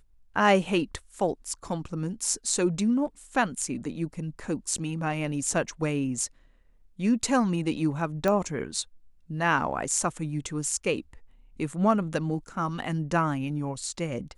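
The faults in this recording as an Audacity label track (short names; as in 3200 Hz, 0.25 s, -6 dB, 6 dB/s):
8.280000	8.280000	pop -14 dBFS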